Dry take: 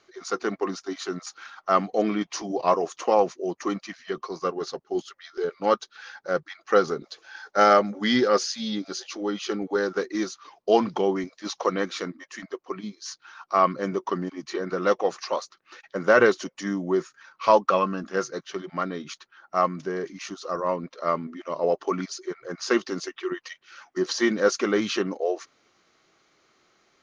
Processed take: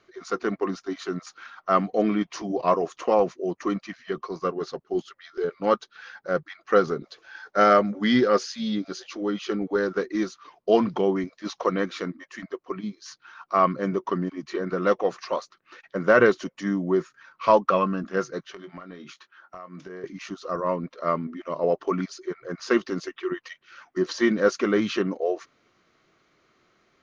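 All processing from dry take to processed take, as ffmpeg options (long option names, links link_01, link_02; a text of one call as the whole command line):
ffmpeg -i in.wav -filter_complex "[0:a]asettb=1/sr,asplit=3[link_01][link_02][link_03];[link_01]atrim=end=18.524[link_04];[link_02]atrim=start=18.52:end=20.04,asetpts=PTS-STARTPTS,afade=type=in:duration=0.004:curve=qsin,afade=type=out:start_time=1.516:duration=0.004:curve=qsin,highpass=frequency=390:poles=1,acompressor=threshold=-37dB:ratio=20:attack=3.2:release=140:knee=1:detection=peak,asplit=2[link_05][link_06];[link_06]adelay=22,volume=-9dB[link_07];[link_05][link_07]amix=inputs=2:normalize=0,atrim=end_sample=67032[link_08];[link_03]atrim=start=20.036[link_09];[link_04][link_08]acrossfade=duration=0.004:curve1=hsin:curve2=qsin[link_10];[link_10][link_09]acrossfade=duration=0.004:curve1=qsin:curve2=hsin,bass=frequency=250:gain=5,treble=frequency=4000:gain=-8,bandreject=frequency=820:width=12" out.wav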